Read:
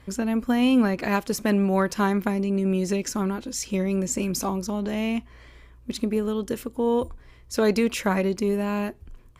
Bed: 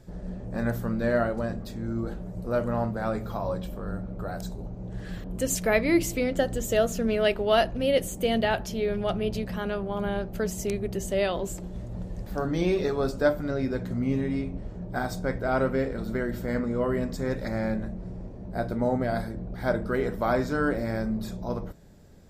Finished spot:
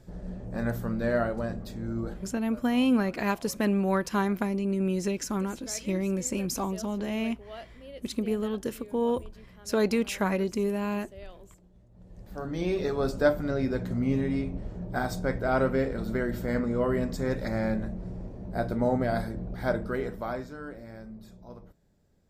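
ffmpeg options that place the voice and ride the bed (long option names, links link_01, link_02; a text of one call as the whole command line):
ffmpeg -i stem1.wav -i stem2.wav -filter_complex "[0:a]adelay=2150,volume=-4dB[link_01];[1:a]volume=19.5dB,afade=type=out:start_time=2.08:duration=0.32:silence=0.105925,afade=type=in:start_time=11.94:duration=1.24:silence=0.0841395,afade=type=out:start_time=19.49:duration=1.07:silence=0.177828[link_02];[link_01][link_02]amix=inputs=2:normalize=0" out.wav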